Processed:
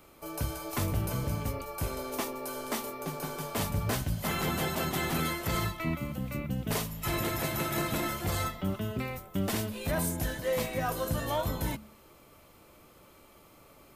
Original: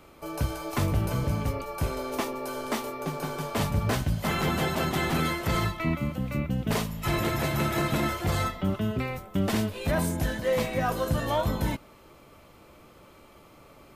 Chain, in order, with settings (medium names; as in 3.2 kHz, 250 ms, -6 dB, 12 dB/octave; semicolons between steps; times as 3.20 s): treble shelf 7.5 kHz +10.5 dB; de-hum 71.66 Hz, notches 3; trim -4.5 dB